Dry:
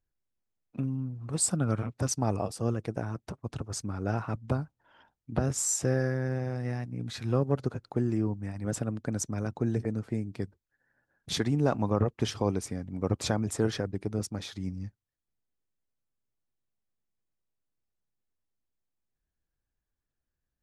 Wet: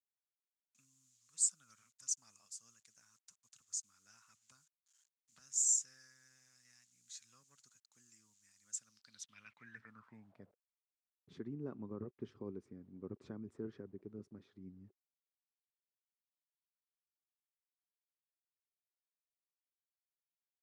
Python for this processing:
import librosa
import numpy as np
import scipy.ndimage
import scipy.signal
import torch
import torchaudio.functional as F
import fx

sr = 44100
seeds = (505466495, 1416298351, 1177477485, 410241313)

y = fx.band_shelf(x, sr, hz=510.0, db=-13.5, octaves=1.7)
y = fx.quant_dither(y, sr, seeds[0], bits=10, dither='none')
y = fx.filter_sweep_bandpass(y, sr, from_hz=6900.0, to_hz=380.0, start_s=8.8, end_s=10.71, q=5.9)
y = y * librosa.db_to_amplitude(2.0)